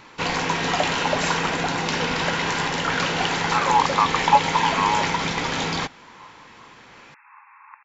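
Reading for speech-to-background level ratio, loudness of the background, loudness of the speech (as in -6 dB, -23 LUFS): 1.0 dB, -23.0 LUFS, -22.0 LUFS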